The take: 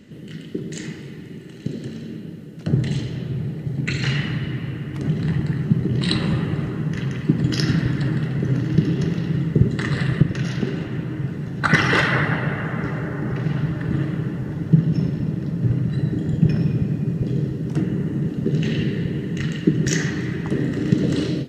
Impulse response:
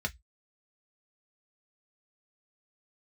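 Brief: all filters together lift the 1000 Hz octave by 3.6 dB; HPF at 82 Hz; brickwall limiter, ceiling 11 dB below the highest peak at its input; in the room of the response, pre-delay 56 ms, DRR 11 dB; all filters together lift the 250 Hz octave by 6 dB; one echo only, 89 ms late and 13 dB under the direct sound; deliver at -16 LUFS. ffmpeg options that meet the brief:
-filter_complex "[0:a]highpass=82,equalizer=f=250:t=o:g=9,equalizer=f=1k:t=o:g=4.5,alimiter=limit=-8dB:level=0:latency=1,aecho=1:1:89:0.224,asplit=2[a][b];[1:a]atrim=start_sample=2205,adelay=56[c];[b][c]afir=irnorm=-1:irlink=0,volume=-15.5dB[d];[a][d]amix=inputs=2:normalize=0,volume=3dB"

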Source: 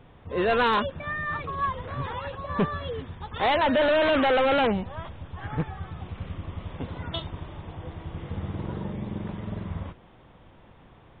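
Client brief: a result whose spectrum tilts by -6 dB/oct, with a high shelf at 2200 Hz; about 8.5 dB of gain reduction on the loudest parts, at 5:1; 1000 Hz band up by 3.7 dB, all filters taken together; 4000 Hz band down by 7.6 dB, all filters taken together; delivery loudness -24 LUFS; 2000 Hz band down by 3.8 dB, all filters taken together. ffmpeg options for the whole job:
-af "equalizer=f=1k:t=o:g=6.5,equalizer=f=2k:t=o:g=-5,highshelf=f=2.2k:g=-3,equalizer=f=4k:t=o:g=-6,acompressor=threshold=-27dB:ratio=5,volume=8.5dB"

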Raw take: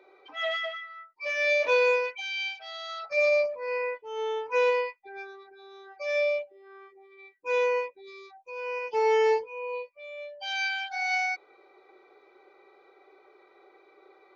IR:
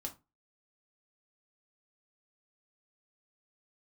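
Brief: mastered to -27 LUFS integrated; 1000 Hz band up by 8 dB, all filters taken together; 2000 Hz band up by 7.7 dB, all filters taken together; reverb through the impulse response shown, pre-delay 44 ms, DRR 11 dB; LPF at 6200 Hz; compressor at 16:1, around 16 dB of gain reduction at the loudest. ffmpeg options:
-filter_complex "[0:a]lowpass=6.2k,equalizer=f=1k:t=o:g=7.5,equalizer=f=2k:t=o:g=8,acompressor=threshold=-31dB:ratio=16,asplit=2[a][b];[1:a]atrim=start_sample=2205,adelay=44[c];[b][c]afir=irnorm=-1:irlink=0,volume=-9dB[d];[a][d]amix=inputs=2:normalize=0,volume=7dB"

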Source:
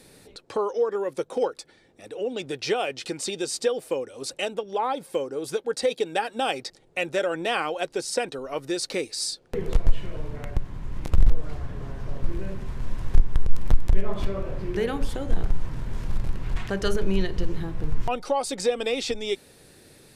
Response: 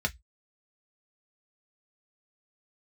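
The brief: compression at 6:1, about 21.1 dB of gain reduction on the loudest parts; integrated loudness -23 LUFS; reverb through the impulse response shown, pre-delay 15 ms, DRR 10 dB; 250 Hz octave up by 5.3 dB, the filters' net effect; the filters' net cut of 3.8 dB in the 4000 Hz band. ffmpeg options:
-filter_complex "[0:a]equalizer=f=250:t=o:g=7.5,equalizer=f=4k:t=o:g=-5,acompressor=threshold=-32dB:ratio=6,asplit=2[a][b];[1:a]atrim=start_sample=2205,adelay=15[c];[b][c]afir=irnorm=-1:irlink=0,volume=-17dB[d];[a][d]amix=inputs=2:normalize=0,volume=14.5dB"

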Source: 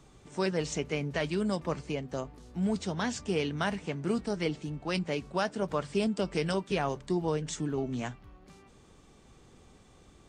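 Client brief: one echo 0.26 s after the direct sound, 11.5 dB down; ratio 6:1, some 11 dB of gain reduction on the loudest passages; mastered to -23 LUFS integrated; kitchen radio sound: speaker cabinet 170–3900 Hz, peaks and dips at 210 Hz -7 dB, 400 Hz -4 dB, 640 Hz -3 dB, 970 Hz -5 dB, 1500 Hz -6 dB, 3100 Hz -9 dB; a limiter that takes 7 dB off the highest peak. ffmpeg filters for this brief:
-af "acompressor=threshold=-37dB:ratio=6,alimiter=level_in=7.5dB:limit=-24dB:level=0:latency=1,volume=-7.5dB,highpass=170,equalizer=f=210:t=q:w=4:g=-7,equalizer=f=400:t=q:w=4:g=-4,equalizer=f=640:t=q:w=4:g=-3,equalizer=f=970:t=q:w=4:g=-5,equalizer=f=1.5k:t=q:w=4:g=-6,equalizer=f=3.1k:t=q:w=4:g=-9,lowpass=f=3.9k:w=0.5412,lowpass=f=3.9k:w=1.3066,aecho=1:1:260:0.266,volume=24dB"

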